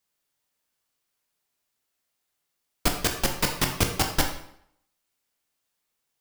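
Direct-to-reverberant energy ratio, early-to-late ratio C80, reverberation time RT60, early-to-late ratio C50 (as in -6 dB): 3.0 dB, 9.5 dB, 0.70 s, 7.0 dB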